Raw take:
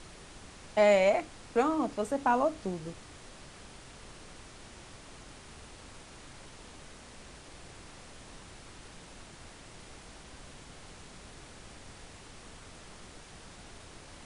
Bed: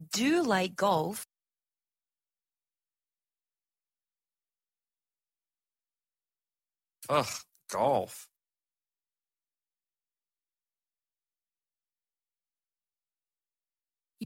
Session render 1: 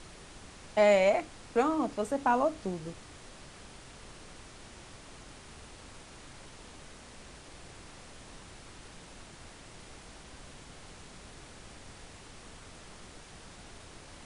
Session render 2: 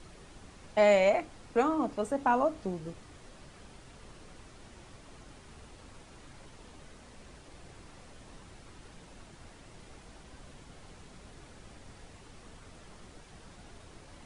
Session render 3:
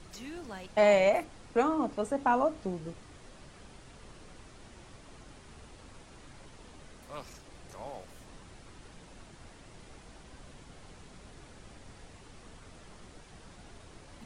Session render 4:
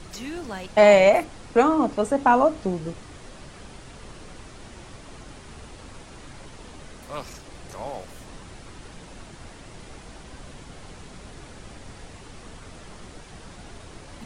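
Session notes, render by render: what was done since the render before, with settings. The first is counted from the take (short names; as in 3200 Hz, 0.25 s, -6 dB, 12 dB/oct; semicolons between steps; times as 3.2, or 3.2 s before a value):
nothing audible
denoiser 6 dB, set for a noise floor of -51 dBFS
add bed -16.5 dB
gain +9 dB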